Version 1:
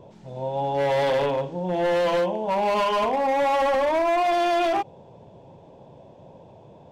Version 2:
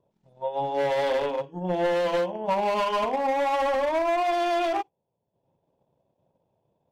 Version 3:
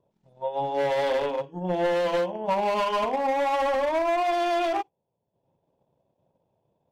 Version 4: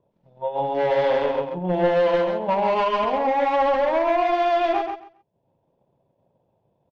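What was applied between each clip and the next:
spectral noise reduction 22 dB; transient shaper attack +9 dB, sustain -8 dB; gain -3 dB
nothing audible
air absorption 180 m; on a send: feedback echo 0.134 s, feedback 18%, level -5.5 dB; on the sum: gain +3.5 dB

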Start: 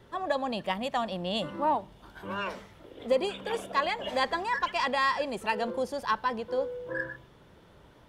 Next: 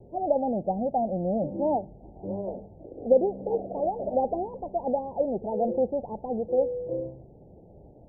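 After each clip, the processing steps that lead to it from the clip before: steep low-pass 810 Hz 96 dB/oct; gain +6 dB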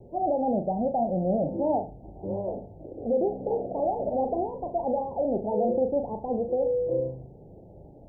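limiter -20 dBFS, peak gain reduction 10.5 dB; on a send: flutter echo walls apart 6.6 m, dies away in 0.31 s; on the sum: gain +1.5 dB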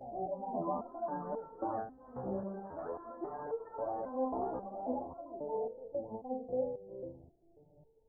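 reverse echo 0.934 s -12.5 dB; echoes that change speed 0.304 s, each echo +4 st, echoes 3, each echo -6 dB; stepped resonator 3.7 Hz 64–450 Hz; gain -1.5 dB

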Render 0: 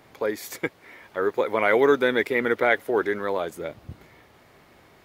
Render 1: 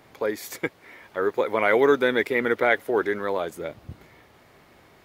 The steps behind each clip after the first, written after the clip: nothing audible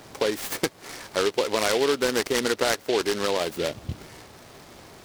compressor 4:1, threshold -29 dBFS, peak gain reduction 12.5 dB; noise-modulated delay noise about 3000 Hz, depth 0.093 ms; gain +7.5 dB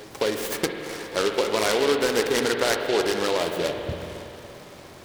reverse echo 0.26 s -19.5 dB; spring tank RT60 3.2 s, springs 46/57 ms, chirp 20 ms, DRR 4 dB

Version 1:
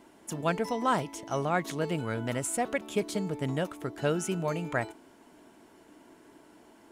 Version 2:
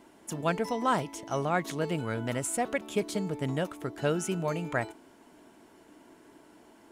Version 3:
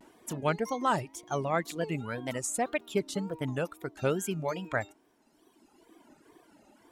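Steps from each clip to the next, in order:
nothing audible
wow and flutter 150 cents; reverb removal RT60 1.8 s

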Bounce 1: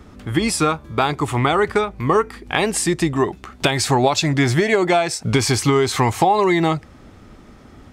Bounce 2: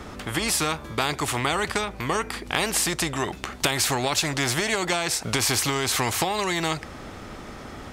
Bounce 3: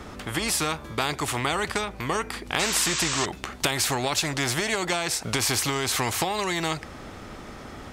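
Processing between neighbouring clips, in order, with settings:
spectral compressor 2:1; gain -3 dB
painted sound noise, 2.59–3.26, 890–8300 Hz -27 dBFS; gain -1.5 dB

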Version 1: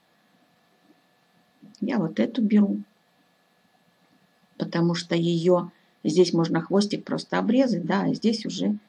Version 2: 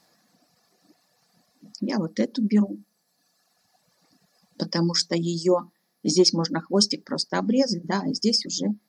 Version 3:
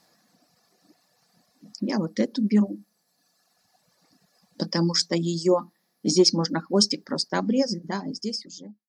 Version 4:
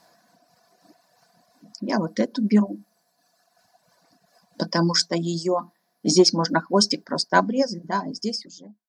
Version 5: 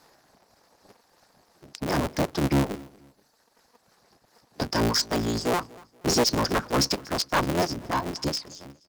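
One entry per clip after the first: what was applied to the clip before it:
reverb removal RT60 1.6 s; resonant high shelf 4100 Hz +7 dB, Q 3
ending faded out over 1.56 s
small resonant body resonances 690/990/1500 Hz, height 12 dB, ringing for 35 ms; noise-modulated level, depth 65%; gain +4 dB
cycle switcher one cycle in 3, inverted; soft clip -17.5 dBFS, distortion -9 dB; feedback echo 0.238 s, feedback 32%, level -23 dB

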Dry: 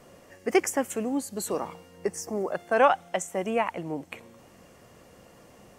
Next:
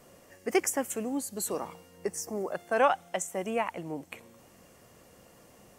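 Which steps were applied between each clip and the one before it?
high shelf 7200 Hz +8.5 dB; gain -4 dB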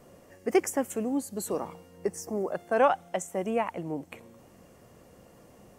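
tilt shelf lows +4 dB, about 1100 Hz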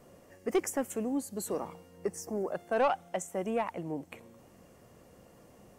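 soft clip -17 dBFS, distortion -16 dB; gain -2.5 dB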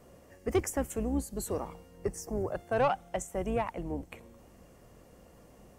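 octaver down 2 oct, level -2 dB

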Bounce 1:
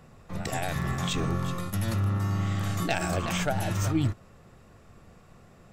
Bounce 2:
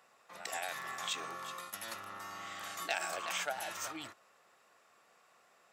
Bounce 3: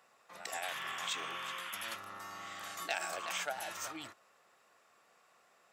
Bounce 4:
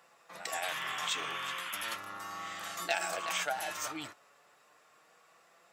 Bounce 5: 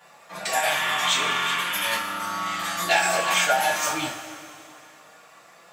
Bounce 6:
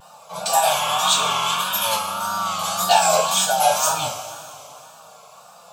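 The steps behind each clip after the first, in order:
HPF 790 Hz 12 dB/oct; gain -4.5 dB
painted sound noise, 0.63–1.96, 920–3600 Hz -44 dBFS; gain -1 dB
flange 0.35 Hz, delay 5.8 ms, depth 1.2 ms, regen +56%; gain +8 dB
two-slope reverb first 0.29 s, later 2.7 s, from -17 dB, DRR -9.5 dB; gain +3 dB
fixed phaser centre 790 Hz, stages 4; wow and flutter 81 cents; spectral gain 3.27–3.6, 280–3000 Hz -6 dB; gain +8 dB

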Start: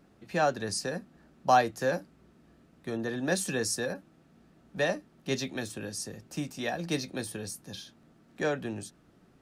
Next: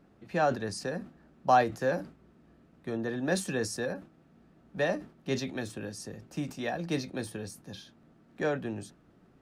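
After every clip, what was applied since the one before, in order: high shelf 3500 Hz -9 dB; sustainer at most 150 dB/s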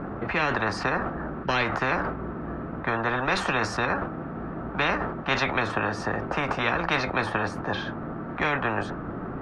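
synth low-pass 1300 Hz, resonance Q 1.9; spectral compressor 10:1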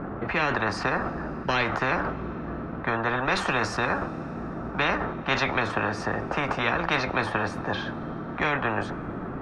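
Schroeder reverb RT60 4 s, combs from 30 ms, DRR 19.5 dB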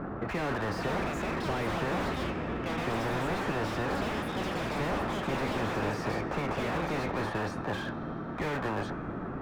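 echoes that change speed 0.629 s, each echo +6 st, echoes 2; slew limiter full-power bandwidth 43 Hz; gain -3 dB

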